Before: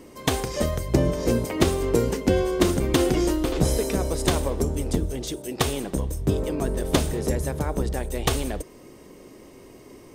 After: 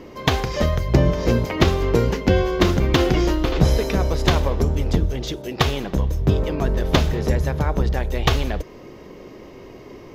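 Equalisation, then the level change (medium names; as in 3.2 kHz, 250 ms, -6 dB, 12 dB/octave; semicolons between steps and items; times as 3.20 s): dynamic bell 420 Hz, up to -5 dB, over -35 dBFS, Q 0.71; boxcar filter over 5 samples; peaking EQ 270 Hz -3.5 dB 0.57 oct; +7.5 dB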